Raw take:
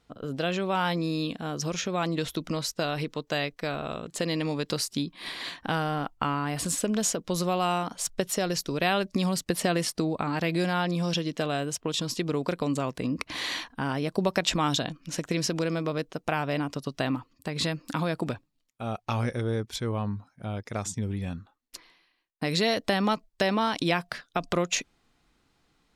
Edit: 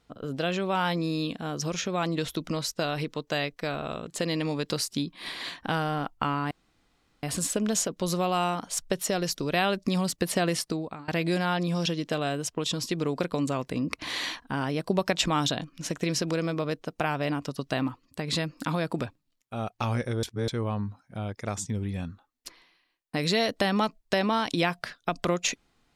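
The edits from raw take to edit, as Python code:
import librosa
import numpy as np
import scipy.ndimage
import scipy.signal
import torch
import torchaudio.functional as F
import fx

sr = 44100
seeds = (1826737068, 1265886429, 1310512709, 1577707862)

y = fx.edit(x, sr, fx.insert_room_tone(at_s=6.51, length_s=0.72),
    fx.fade_out_to(start_s=9.87, length_s=0.49, floor_db=-23.0),
    fx.reverse_span(start_s=19.51, length_s=0.25), tone=tone)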